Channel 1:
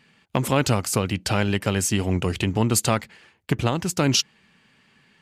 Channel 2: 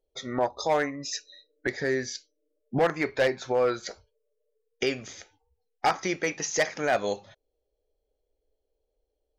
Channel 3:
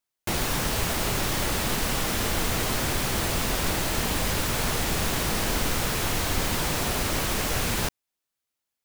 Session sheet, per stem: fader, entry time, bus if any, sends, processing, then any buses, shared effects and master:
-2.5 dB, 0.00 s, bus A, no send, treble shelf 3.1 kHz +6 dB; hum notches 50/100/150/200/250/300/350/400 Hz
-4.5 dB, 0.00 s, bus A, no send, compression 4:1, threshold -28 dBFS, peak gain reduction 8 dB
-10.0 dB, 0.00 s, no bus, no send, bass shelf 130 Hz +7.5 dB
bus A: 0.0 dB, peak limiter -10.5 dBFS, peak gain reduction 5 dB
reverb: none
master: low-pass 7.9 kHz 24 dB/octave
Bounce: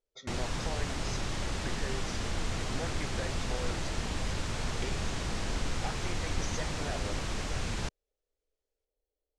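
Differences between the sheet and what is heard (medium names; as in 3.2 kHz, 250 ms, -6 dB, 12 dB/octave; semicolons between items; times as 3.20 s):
stem 1: muted; stem 2 -4.5 dB -> -10.5 dB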